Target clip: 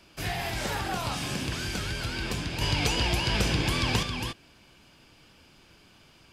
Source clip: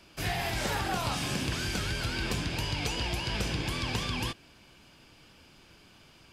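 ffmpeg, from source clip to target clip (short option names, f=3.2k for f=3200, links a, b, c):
-filter_complex "[0:a]asettb=1/sr,asplit=3[a][b][c];[a]atrim=end=2.614[d];[b]atrim=start=2.61:end=4.03,asetpts=PTS-STARTPTS,afade=t=in:d=0.004:c=qsin,afade=t=out:st=1.416:d=0.004:c=qsin,acontrast=47[e];[c]atrim=start=4.026[f];[d][e]acrossfade=d=0.004:c1=hsin:c2=qsin[g];[g][f]acrossfade=d=0.004:c1=qsin:c2=hsin"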